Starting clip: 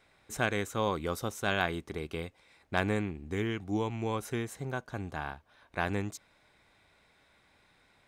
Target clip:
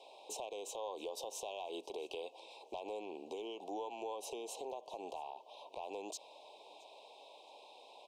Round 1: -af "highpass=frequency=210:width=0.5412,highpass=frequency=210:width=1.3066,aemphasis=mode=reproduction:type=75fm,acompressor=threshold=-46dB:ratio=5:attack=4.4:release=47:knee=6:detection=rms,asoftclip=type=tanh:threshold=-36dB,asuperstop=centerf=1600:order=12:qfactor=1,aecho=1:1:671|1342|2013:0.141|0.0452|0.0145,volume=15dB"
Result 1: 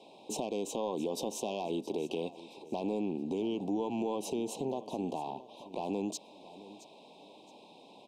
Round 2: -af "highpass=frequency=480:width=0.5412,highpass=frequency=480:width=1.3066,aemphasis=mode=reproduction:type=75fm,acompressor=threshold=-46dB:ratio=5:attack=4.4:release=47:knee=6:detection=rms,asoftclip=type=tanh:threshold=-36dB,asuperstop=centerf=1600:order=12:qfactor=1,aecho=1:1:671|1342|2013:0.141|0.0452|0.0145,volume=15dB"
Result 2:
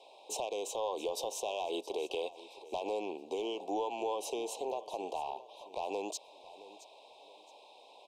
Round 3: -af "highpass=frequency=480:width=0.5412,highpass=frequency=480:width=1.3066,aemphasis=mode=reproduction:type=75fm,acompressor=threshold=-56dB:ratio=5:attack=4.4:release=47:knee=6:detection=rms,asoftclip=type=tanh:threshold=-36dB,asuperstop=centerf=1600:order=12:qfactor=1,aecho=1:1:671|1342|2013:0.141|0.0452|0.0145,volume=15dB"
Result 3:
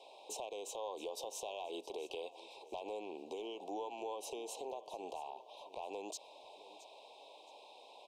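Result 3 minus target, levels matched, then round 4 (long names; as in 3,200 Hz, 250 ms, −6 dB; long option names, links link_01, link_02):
echo-to-direct +7.5 dB
-af "highpass=frequency=480:width=0.5412,highpass=frequency=480:width=1.3066,aemphasis=mode=reproduction:type=75fm,acompressor=threshold=-56dB:ratio=5:attack=4.4:release=47:knee=6:detection=rms,asoftclip=type=tanh:threshold=-36dB,asuperstop=centerf=1600:order=12:qfactor=1,aecho=1:1:671|1342:0.0596|0.0191,volume=15dB"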